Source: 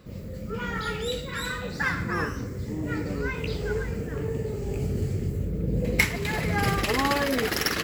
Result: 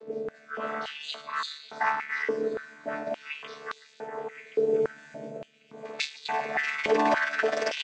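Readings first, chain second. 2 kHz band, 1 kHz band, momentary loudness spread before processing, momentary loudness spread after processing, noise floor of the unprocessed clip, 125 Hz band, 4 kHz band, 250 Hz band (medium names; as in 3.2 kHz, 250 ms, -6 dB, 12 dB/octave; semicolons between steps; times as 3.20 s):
-2.0 dB, +1.0 dB, 8 LU, 16 LU, -36 dBFS, -24.0 dB, -4.0 dB, -8.5 dB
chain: vocoder on a held chord bare fifth, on D3; on a send: delay 1074 ms -15 dB; on the sum: step-sequenced high-pass 3.5 Hz 440–3900 Hz; trim +3.5 dB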